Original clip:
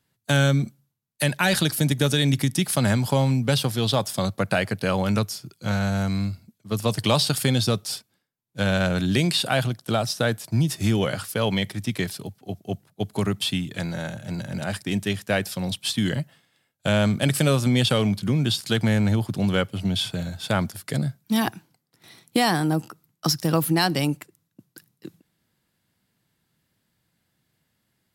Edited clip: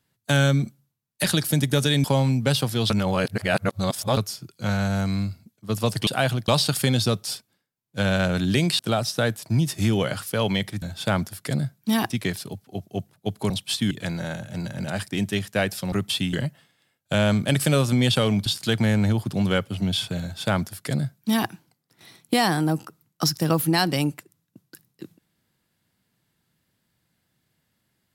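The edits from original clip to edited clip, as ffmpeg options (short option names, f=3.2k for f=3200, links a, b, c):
-filter_complex "[0:a]asplit=15[a][b][c][d][e][f][g][h][i][j][k][l][m][n][o];[a]atrim=end=1.242[p];[b]atrim=start=1.518:end=2.322[q];[c]atrim=start=3.058:end=3.922[r];[d]atrim=start=3.918:end=5.192,asetpts=PTS-STARTPTS,areverse[s];[e]atrim=start=5.188:end=7.092[t];[f]atrim=start=9.398:end=9.812[u];[g]atrim=start=7.088:end=9.402[v];[h]atrim=start=9.808:end=11.842[w];[i]atrim=start=20.248:end=21.532[x];[j]atrim=start=11.838:end=13.242[y];[k]atrim=start=15.658:end=16.072[z];[l]atrim=start=13.648:end=15.662[aa];[m]atrim=start=13.238:end=13.652[ab];[n]atrim=start=16.068:end=18.202[ac];[o]atrim=start=18.488[ad];[p][q]acrossfade=d=0.004:c1=hsin:c2=hsin[ae];[ae][r]acrossfade=d=0.004:c1=hsin:c2=hsin[af];[af][s]acrossfade=d=0.004:c1=hsin:c2=hsin[ag];[ag][t]acrossfade=d=0.004:c1=hsin:c2=hsin[ah];[ah][u]acrossfade=d=0.004:c1=hsin:c2=hsin[ai];[ai][v]acrossfade=d=0.004:c1=hsin:c2=hsin[aj];[aj][w]acrossfade=d=0.004:c1=hsin:c2=hsin[ak];[ak][x]acrossfade=d=0.004:c1=hsin:c2=hsin[al];[al][y]acrossfade=d=0.004:c1=hsin:c2=hsin[am];[am][z]acrossfade=d=0.004:c1=hsin:c2=hsin[an];[an][aa]acrossfade=d=0.004:c1=hsin:c2=hsin[ao];[ao][ab]acrossfade=d=0.004:c1=hsin:c2=hsin[ap];[ap][ac]acrossfade=d=0.004:c1=hsin:c2=hsin[aq];[aq][ad]acrossfade=d=0.004:c1=hsin:c2=hsin"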